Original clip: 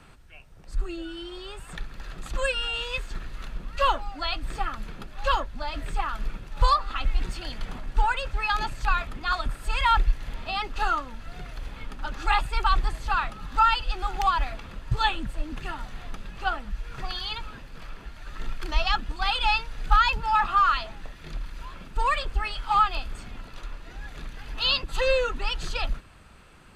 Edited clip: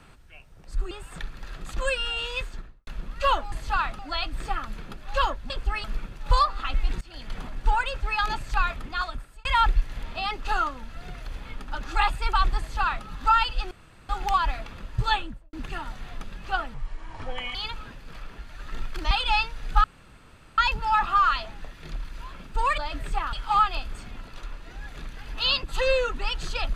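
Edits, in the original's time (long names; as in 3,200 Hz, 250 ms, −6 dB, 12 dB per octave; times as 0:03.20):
0:00.91–0:01.48: remove
0:02.96–0:03.44: fade out and dull
0:05.60–0:06.15: swap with 0:22.19–0:22.53
0:07.32–0:07.68: fade in, from −20.5 dB
0:09.16–0:09.76: fade out
0:12.90–0:13.37: duplicate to 0:04.09
0:14.02: splice in room tone 0.38 s
0:15.03–0:15.46: fade out and dull
0:16.67–0:17.22: play speed 68%
0:18.78–0:19.26: remove
0:19.99: splice in room tone 0.74 s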